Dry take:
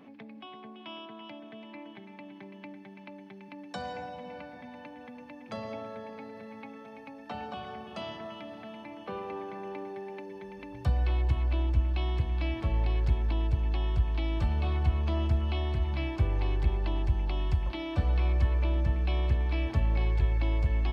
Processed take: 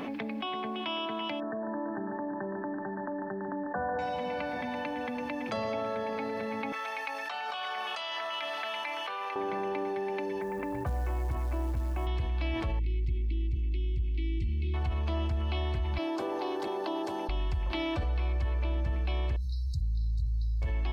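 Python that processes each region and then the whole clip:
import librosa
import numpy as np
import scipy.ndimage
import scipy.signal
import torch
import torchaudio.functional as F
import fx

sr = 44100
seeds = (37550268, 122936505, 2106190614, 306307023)

y = fx.chain(x, sr, fx.brickwall_lowpass(high_hz=1900.0),
    fx.echo_single(ms=146, db=-8.0), at=(1.4, 3.99))
y = fx.chain(y, sr, fx.highpass(hz=1100.0, slope=12),
    fx.over_compress(threshold_db=-50.0, ratio=-1.0), at=(6.72, 9.36))
y = fx.chain(y, sr, fx.lowpass(hz=1900.0, slope=24),
    fx.low_shelf(hz=70.0, db=-9.0),
    fx.quant_float(bits=4), at=(10.41, 12.07))
y = fx.chain(y, sr, fx.brickwall_bandstop(low_hz=420.0, high_hz=1900.0),
    fx.high_shelf(hz=2500.0, db=-10.5), at=(12.79, 14.74))
y = fx.chain(y, sr, fx.highpass(hz=280.0, slope=24),
    fx.peak_eq(hz=2300.0, db=-12.5, octaves=0.96), at=(15.98, 17.29))
y = fx.chain(y, sr, fx.brickwall_bandstop(low_hz=180.0, high_hz=3700.0),
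    fx.hum_notches(base_hz=60, count=10), at=(19.36, 20.62))
y = fx.peak_eq(y, sr, hz=150.0, db=-6.0, octaves=1.7)
y = fx.env_flatten(y, sr, amount_pct=70)
y = y * librosa.db_to_amplitude(-5.0)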